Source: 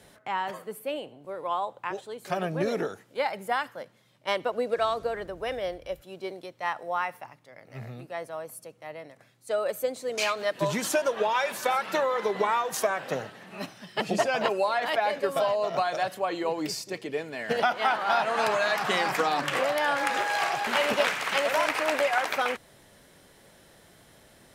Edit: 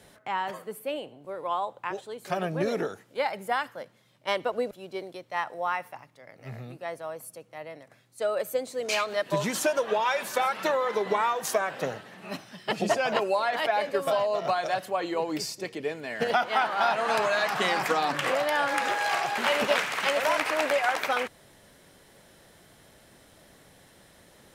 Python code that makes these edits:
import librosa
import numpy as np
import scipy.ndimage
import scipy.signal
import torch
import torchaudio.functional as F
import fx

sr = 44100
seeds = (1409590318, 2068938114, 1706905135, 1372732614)

y = fx.edit(x, sr, fx.cut(start_s=4.71, length_s=1.29), tone=tone)